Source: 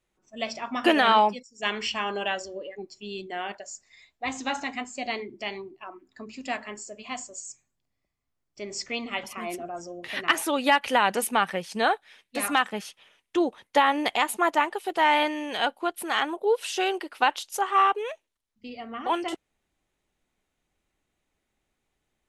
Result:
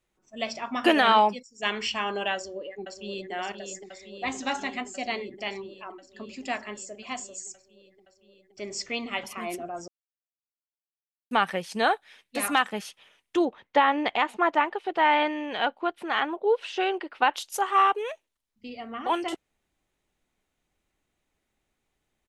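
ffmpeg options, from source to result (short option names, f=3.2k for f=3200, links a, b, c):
-filter_complex "[0:a]asplit=2[a][b];[b]afade=t=in:st=2.34:d=0.01,afade=t=out:st=3.31:d=0.01,aecho=0:1:520|1040|1560|2080|2600|3120|3640|4160|4680|5200|5720|6240:0.446684|0.357347|0.285877|0.228702|0.182962|0.146369|0.117095|0.0936763|0.0749411|0.0599529|0.0479623|0.0383698[c];[a][c]amix=inputs=2:normalize=0,asettb=1/sr,asplit=3[d][e][f];[d]atrim=end=13.454[g];[e]atrim=start=13.45:end=17.34,asetpts=PTS-STARTPTS,afade=t=in:d=0.004:c=qsin,afade=t=out:st=3.886:d=0.004:c=qsin,lowpass=3.1k[h];[f]atrim=start=17.336[i];[g][h]acrossfade=d=0.004:c1=hsin:c2=qsin[j];[j][i]acrossfade=d=0.004:c1=qsin:c2=hsin,asplit=3[k][l][m];[k]atrim=end=9.88,asetpts=PTS-STARTPTS,afade=t=out:st=9.876:d=0.004:c=hsin[n];[l]atrim=start=9.88:end=11.31,asetpts=PTS-STARTPTS,volume=0[o];[m]atrim=start=11.31,asetpts=PTS-STARTPTS,afade=t=in:d=0.004:c=hsin[p];[n][o][p]concat=n=3:v=0:a=1"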